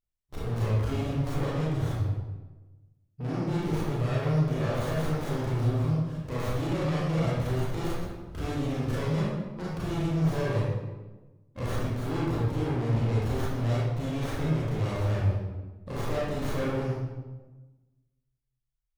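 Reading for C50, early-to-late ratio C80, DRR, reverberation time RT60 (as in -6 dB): -3.0 dB, 1.0 dB, -7.5 dB, 1.2 s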